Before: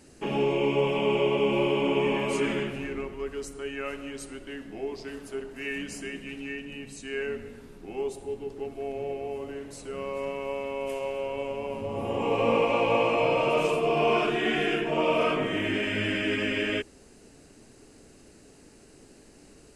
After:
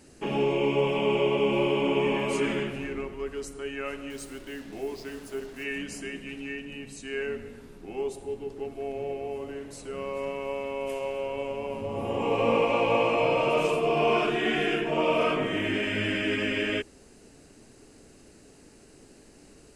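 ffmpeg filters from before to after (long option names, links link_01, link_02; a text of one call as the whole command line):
ffmpeg -i in.wav -filter_complex "[0:a]asettb=1/sr,asplit=3[link_01][link_02][link_03];[link_01]atrim=end=4.104[link_04];[link_02]atrim=start=4.1:end=5.64,asetpts=PTS-STARTPTS,afade=type=in:duration=0.004:curve=qsin,afade=type=out:start_time=1.536:duration=0.004:curve=qsin,acrusher=bits=7:mix=0:aa=0.5[link_05];[link_03]atrim=start=5.636[link_06];[link_04][link_05]acrossfade=duration=0.004:curve1=hsin:curve2=qsin[link_07];[link_07][link_06]acrossfade=duration=0.004:curve1=qsin:curve2=hsin" out.wav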